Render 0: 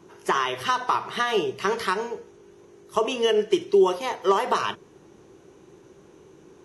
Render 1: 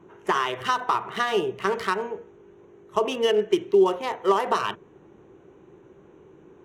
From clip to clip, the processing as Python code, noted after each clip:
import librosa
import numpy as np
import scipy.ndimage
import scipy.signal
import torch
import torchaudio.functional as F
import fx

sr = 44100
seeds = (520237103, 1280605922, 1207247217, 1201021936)

y = fx.wiener(x, sr, points=9)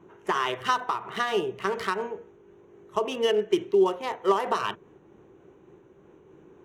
y = fx.am_noise(x, sr, seeds[0], hz=5.7, depth_pct=55)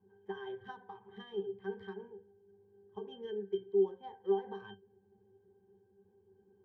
y = fx.octave_resonator(x, sr, note='G', decay_s=0.15)
y = y * librosa.db_to_amplitude(-4.5)